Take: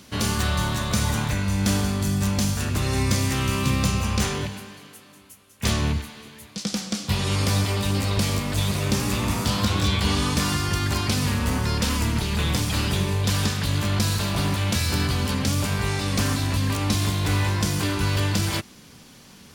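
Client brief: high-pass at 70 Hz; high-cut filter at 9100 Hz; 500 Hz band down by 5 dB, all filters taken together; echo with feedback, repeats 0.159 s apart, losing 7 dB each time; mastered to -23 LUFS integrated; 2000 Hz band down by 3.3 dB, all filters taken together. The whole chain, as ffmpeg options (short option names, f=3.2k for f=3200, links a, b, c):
-af "highpass=70,lowpass=9.1k,equalizer=f=500:t=o:g=-6.5,equalizer=f=2k:t=o:g=-4,aecho=1:1:159|318|477|636|795:0.447|0.201|0.0905|0.0407|0.0183,volume=2dB"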